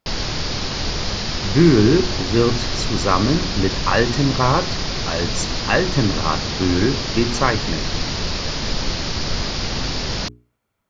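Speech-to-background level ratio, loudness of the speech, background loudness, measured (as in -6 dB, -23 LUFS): 3.5 dB, -20.0 LUFS, -23.5 LUFS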